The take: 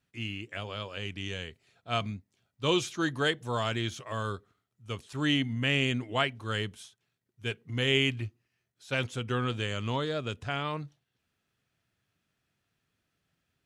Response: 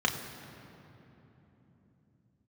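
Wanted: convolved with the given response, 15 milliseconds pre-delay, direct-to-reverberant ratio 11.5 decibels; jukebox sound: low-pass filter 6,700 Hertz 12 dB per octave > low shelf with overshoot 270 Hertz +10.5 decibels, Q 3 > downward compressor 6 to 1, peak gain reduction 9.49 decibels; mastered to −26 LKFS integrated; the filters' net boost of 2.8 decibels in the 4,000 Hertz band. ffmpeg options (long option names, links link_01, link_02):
-filter_complex "[0:a]equalizer=frequency=4000:width_type=o:gain=4.5,asplit=2[link_01][link_02];[1:a]atrim=start_sample=2205,adelay=15[link_03];[link_02][link_03]afir=irnorm=-1:irlink=0,volume=-22dB[link_04];[link_01][link_04]amix=inputs=2:normalize=0,lowpass=6700,lowshelf=frequency=270:width_type=q:width=3:gain=10.5,acompressor=threshold=-24dB:ratio=6,volume=3.5dB"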